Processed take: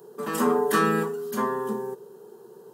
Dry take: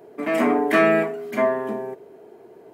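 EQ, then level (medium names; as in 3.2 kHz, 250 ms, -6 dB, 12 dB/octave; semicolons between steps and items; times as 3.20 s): peaking EQ 96 Hz +3.5 dB 2.3 oct; treble shelf 3.4 kHz +11 dB; static phaser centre 440 Hz, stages 8; 0.0 dB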